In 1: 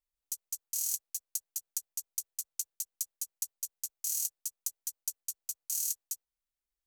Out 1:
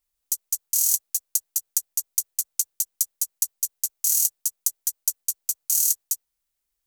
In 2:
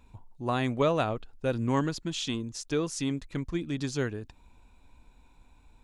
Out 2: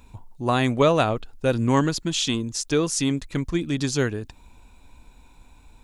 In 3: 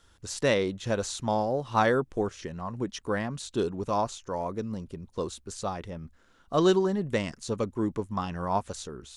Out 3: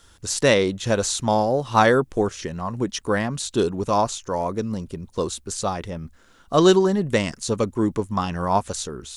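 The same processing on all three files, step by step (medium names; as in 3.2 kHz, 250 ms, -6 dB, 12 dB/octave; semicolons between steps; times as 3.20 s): treble shelf 5.3 kHz +6.5 dB; trim +7 dB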